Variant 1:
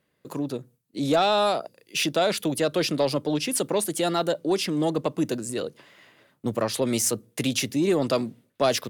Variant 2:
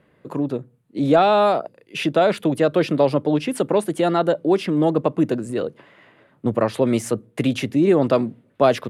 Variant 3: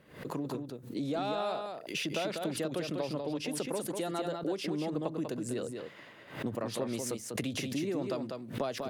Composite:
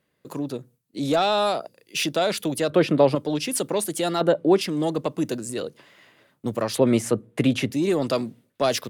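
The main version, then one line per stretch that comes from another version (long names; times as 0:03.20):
1
0:02.70–0:03.15: punch in from 2
0:04.21–0:04.61: punch in from 2
0:06.78–0:07.72: punch in from 2
not used: 3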